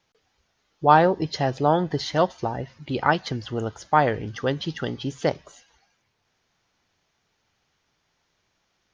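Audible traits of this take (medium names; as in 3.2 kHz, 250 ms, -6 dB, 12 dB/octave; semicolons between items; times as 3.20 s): noise floor -73 dBFS; spectral tilt -4.5 dB/octave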